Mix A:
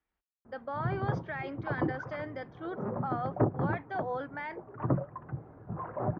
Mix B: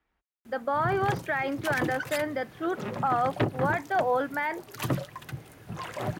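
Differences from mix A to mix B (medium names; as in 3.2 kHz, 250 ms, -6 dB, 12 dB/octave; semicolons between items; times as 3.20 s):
speech +9.5 dB; background: remove inverse Chebyshev low-pass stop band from 4.1 kHz, stop band 60 dB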